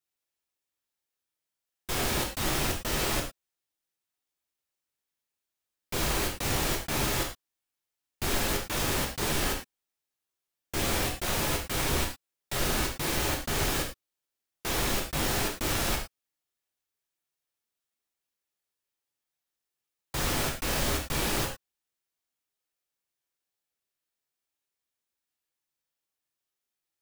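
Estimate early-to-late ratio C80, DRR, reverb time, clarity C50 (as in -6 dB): 11.0 dB, 0.0 dB, not exponential, 7.0 dB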